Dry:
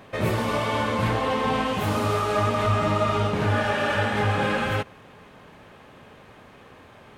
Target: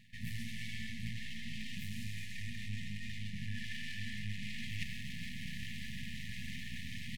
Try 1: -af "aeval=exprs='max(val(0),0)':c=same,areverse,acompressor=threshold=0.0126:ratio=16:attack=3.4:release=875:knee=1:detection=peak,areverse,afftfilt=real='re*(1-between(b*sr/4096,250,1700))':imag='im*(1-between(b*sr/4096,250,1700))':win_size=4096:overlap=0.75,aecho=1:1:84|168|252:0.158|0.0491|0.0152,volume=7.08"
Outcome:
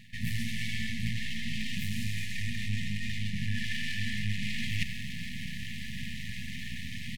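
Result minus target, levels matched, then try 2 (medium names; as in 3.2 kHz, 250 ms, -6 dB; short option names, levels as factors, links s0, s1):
compression: peak gain reduction -9 dB
-af "aeval=exprs='max(val(0),0)':c=same,areverse,acompressor=threshold=0.00422:ratio=16:attack=3.4:release=875:knee=1:detection=peak,areverse,afftfilt=real='re*(1-between(b*sr/4096,250,1700))':imag='im*(1-between(b*sr/4096,250,1700))':win_size=4096:overlap=0.75,aecho=1:1:84|168|252:0.158|0.0491|0.0152,volume=7.08"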